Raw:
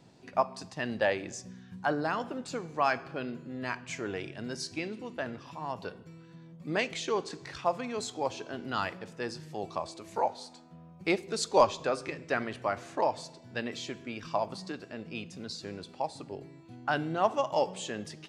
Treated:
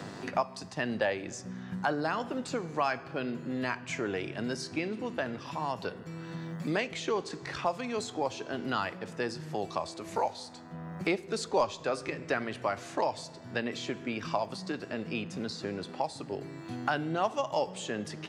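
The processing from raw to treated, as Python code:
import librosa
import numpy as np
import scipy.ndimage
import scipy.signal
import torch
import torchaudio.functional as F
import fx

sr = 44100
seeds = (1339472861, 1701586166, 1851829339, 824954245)

y = fx.dmg_buzz(x, sr, base_hz=100.0, harmonics=20, level_db=-65.0, tilt_db=-1, odd_only=False)
y = fx.band_squash(y, sr, depth_pct=70)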